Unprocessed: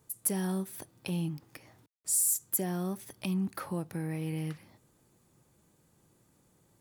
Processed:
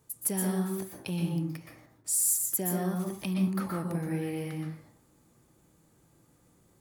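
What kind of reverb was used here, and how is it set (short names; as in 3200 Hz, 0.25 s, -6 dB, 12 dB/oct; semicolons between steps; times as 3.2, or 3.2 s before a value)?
plate-style reverb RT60 0.53 s, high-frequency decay 0.45×, pre-delay 0.11 s, DRR 0.5 dB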